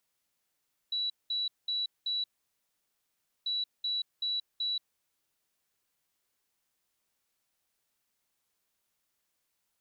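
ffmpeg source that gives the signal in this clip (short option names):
-f lavfi -i "aevalsrc='0.0355*sin(2*PI*3930*t)*clip(min(mod(mod(t,2.54),0.38),0.18-mod(mod(t,2.54),0.38))/0.005,0,1)*lt(mod(t,2.54),1.52)':d=5.08:s=44100"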